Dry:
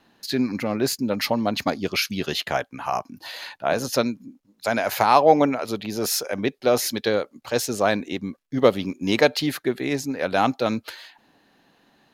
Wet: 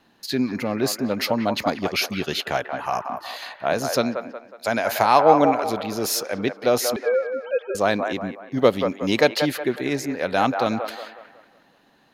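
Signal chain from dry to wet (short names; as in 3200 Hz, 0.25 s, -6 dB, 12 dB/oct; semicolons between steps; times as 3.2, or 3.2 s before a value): 6.96–7.75 sine-wave speech; band-limited delay 0.183 s, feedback 42%, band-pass 980 Hz, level -5 dB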